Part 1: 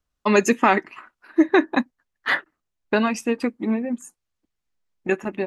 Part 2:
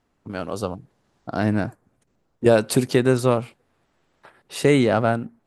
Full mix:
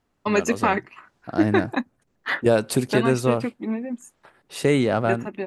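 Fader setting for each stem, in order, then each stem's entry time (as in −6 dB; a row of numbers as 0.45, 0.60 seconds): −4.0, −2.5 decibels; 0.00, 0.00 seconds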